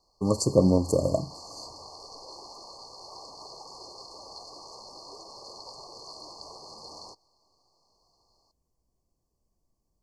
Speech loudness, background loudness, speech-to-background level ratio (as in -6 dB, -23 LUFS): -24.5 LUFS, -44.0 LUFS, 19.5 dB